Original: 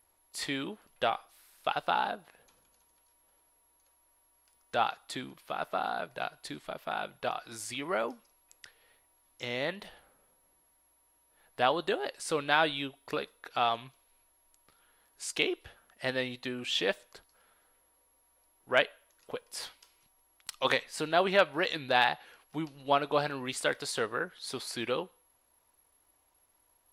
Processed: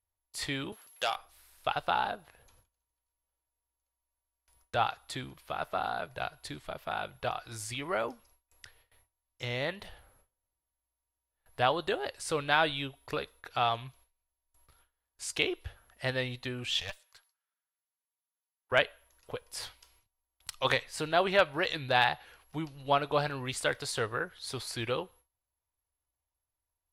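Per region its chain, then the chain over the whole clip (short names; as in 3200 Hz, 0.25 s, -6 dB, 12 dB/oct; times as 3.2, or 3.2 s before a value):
0.72–1.16 HPF 160 Hz + tilt +3.5 dB/oct + core saturation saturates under 2300 Hz
16.8–18.72 HPF 1100 Hz + dynamic EQ 1600 Hz, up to -5 dB, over -47 dBFS, Q 1.4 + tube stage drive 28 dB, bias 0.7
whole clip: gate with hold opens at -54 dBFS; resonant low shelf 140 Hz +11 dB, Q 1.5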